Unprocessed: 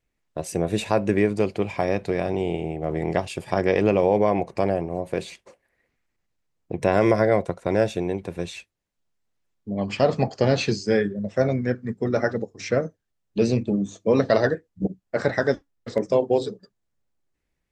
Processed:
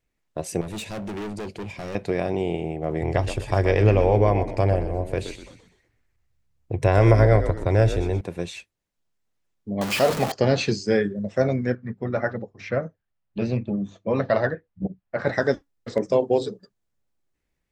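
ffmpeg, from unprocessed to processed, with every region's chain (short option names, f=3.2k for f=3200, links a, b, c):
-filter_complex "[0:a]asettb=1/sr,asplit=3[a][b][c];[a]atrim=end=0.614[d];[b]atrim=start=0.61:end=1.95,asetpts=PTS-STARTPTS,afade=t=in:d=0.004:c=qsin,afade=t=out:st=1.336:d=0.004:c=qsin,equalizer=f=1k:t=o:w=1.7:g=-9.5,volume=29.5dB,asoftclip=hard,volume=-29.5dB[e];[c]atrim=start=1.946[f];[d][e]acrossfade=d=0.004:c1=hsin:c2=qsin[g];[g][f]acrossfade=d=0.004:c1=qsin:c2=hsin,asettb=1/sr,asplit=3[h][i][j];[h]atrim=end=3.014[k];[i]atrim=start=3.01:end=8.21,asetpts=PTS-STARTPTS,afade=t=in:d=0.004:c=qsin,afade=t=out:st=5.196:d=0.004:c=qsin,lowshelf=f=140:t=q:w=3:g=7,asplit=5[l][m][n][o][p];[m]adelay=124,afreqshift=-68,volume=-10dB[q];[n]adelay=248,afreqshift=-136,volume=-17.7dB[r];[o]adelay=372,afreqshift=-204,volume=-25.5dB[s];[p]adelay=496,afreqshift=-272,volume=-33.2dB[t];[l][q][r][s][t]amix=inputs=5:normalize=0,atrim=end_sample=229320[u];[j]atrim=start=8.206[v];[k][u]acrossfade=d=0.004:c1=hsin:c2=qsin[w];[w][v]acrossfade=d=0.004:c1=qsin:c2=hsin,asettb=1/sr,asplit=3[x][y][z];[x]atrim=end=9.814[aa];[y]atrim=start=9.81:end=10.32,asetpts=PTS-STARTPTS,afade=t=in:d=0.004:c=qsin,afade=t=out:st=0.506:d=0.004:c=qsin,aeval=exprs='val(0)+0.5*0.0891*sgn(val(0))':c=same,lowshelf=f=290:g=-8.5[ab];[z]atrim=start=10.316[ac];[aa][ab]acrossfade=d=0.004:c1=hsin:c2=qsin[ad];[ad][ac]acrossfade=d=0.004:c1=qsin:c2=hsin,asettb=1/sr,asplit=3[ae][af][ag];[ae]atrim=end=11.754[ah];[af]atrim=start=11.75:end=15.27,asetpts=PTS-STARTPTS,afade=t=in:d=0.004:c=qsin,afade=t=out:st=3.516:d=0.004:c=qsin,lowpass=2.7k,equalizer=f=310:t=o:w=0.95:g=-6.5,bandreject=f=450:w=8.7[ai];[ag]atrim=start=15.266[aj];[ah][ai]acrossfade=d=0.004:c1=hsin:c2=qsin[ak];[ak][aj]acrossfade=d=0.004:c1=qsin:c2=hsin"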